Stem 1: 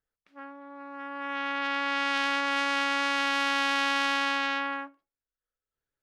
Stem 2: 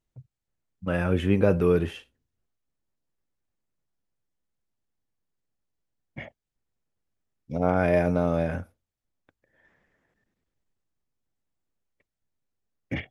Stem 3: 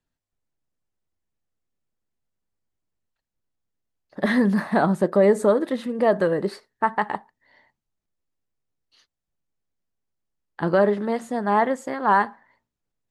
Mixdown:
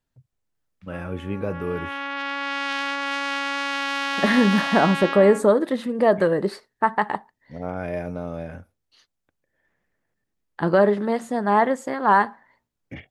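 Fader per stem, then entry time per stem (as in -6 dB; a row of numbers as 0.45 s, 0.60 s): +1.0 dB, -7.0 dB, +1.5 dB; 0.55 s, 0.00 s, 0.00 s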